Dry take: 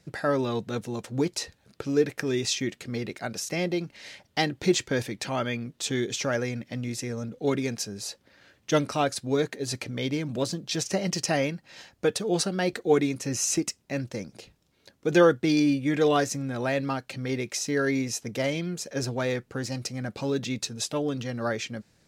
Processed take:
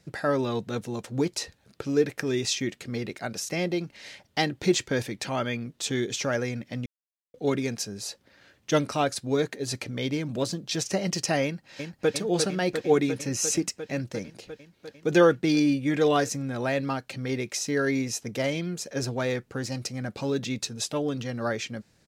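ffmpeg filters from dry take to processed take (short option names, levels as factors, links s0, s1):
-filter_complex "[0:a]asplit=2[s0][s1];[s1]afade=t=in:st=11.44:d=0.01,afade=t=out:st=12.12:d=0.01,aecho=0:1:350|700|1050|1400|1750|2100|2450|2800|3150|3500|3850|4200:0.530884|0.424708|0.339766|0.271813|0.21745|0.17396|0.139168|0.111335|0.0890676|0.0712541|0.0570033|0.0456026[s2];[s0][s2]amix=inputs=2:normalize=0,asplit=3[s3][s4][s5];[s3]atrim=end=6.86,asetpts=PTS-STARTPTS,afade=t=out:st=6.856:d=0.004:c=hsin[s6];[s4]atrim=start=6.86:end=7.34,asetpts=PTS-STARTPTS,volume=0[s7];[s5]atrim=start=7.34,asetpts=PTS-STARTPTS,afade=t=in:d=0.004:c=hsin[s8];[s6][s7][s8]concat=n=3:v=0:a=1"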